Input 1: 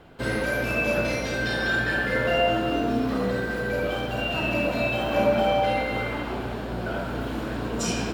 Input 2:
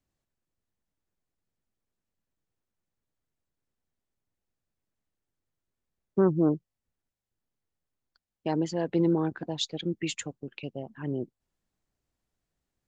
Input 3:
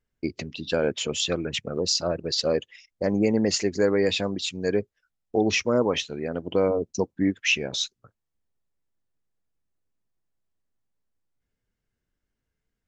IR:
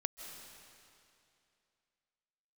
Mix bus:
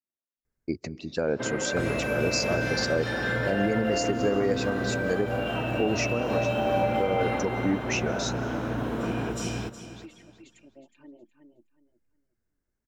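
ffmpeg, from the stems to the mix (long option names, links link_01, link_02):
-filter_complex "[0:a]equalizer=frequency=100:width_type=o:width=1.2:gain=6,bandreject=frequency=4500:width=9.2,adelay=1200,volume=-1dB,asplit=3[link_01][link_02][link_03];[link_02]volume=-18dB[link_04];[link_03]volume=-5.5dB[link_05];[1:a]aecho=1:1:3.3:0.67,asplit=2[link_06][link_07];[link_07]adelay=5.8,afreqshift=0.96[link_08];[link_06][link_08]amix=inputs=2:normalize=1,volume=-14.5dB,asplit=3[link_09][link_10][link_11];[link_10]volume=-7.5dB[link_12];[2:a]equalizer=frequency=3200:width_type=o:width=0.68:gain=-13,adelay=450,volume=-3.5dB,asplit=2[link_13][link_14];[link_14]volume=-9dB[link_15];[link_11]apad=whole_len=587541[link_16];[link_13][link_16]sidechaincompress=threshold=-47dB:ratio=8:attack=16:release=1000[link_17];[link_01][link_09]amix=inputs=2:normalize=0,highpass=180,lowpass=2200,acompressor=threshold=-28dB:ratio=6,volume=0dB[link_18];[3:a]atrim=start_sample=2205[link_19];[link_04][link_15]amix=inputs=2:normalize=0[link_20];[link_20][link_19]afir=irnorm=-1:irlink=0[link_21];[link_05][link_12]amix=inputs=2:normalize=0,aecho=0:1:366|732|1098|1464:1|0.25|0.0625|0.0156[link_22];[link_17][link_18][link_21][link_22]amix=inputs=4:normalize=0,alimiter=limit=-15dB:level=0:latency=1:release=138"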